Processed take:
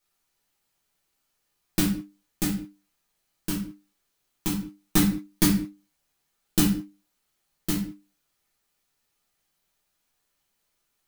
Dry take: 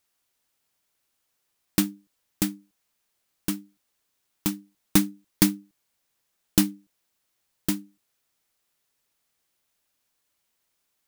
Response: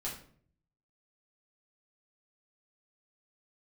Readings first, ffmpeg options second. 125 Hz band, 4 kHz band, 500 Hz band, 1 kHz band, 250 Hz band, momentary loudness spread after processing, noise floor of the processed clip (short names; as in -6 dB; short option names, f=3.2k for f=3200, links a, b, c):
+3.0 dB, 0.0 dB, +1.5 dB, +2.0 dB, +1.0 dB, 14 LU, -76 dBFS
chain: -filter_complex "[1:a]atrim=start_sample=2205,afade=t=out:st=0.28:d=0.01,atrim=end_sample=12789[a];[0:a][a]afir=irnorm=-1:irlink=0"